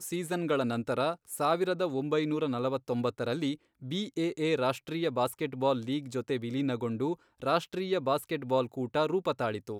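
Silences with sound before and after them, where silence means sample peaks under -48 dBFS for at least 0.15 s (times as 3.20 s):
3.55–3.82 s
7.15–7.40 s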